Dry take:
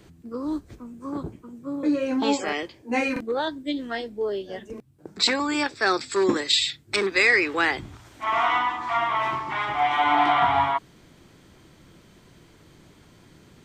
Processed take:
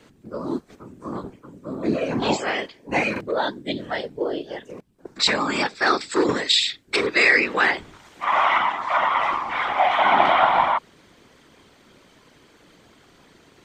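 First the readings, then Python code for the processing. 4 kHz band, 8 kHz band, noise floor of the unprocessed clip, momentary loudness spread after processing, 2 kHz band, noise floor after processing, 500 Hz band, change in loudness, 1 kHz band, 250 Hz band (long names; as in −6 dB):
+2.5 dB, +0.5 dB, −54 dBFS, 17 LU, +3.0 dB, −55 dBFS, +2.0 dB, +3.0 dB, +3.0 dB, −0.5 dB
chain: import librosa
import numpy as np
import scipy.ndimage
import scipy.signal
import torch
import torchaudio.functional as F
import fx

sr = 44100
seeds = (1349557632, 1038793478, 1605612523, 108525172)

y = fx.highpass(x, sr, hz=400.0, slope=6)
y = fx.high_shelf(y, sr, hz=7300.0, db=-7.5)
y = fx.whisperise(y, sr, seeds[0])
y = F.gain(torch.from_numpy(y), 4.0).numpy()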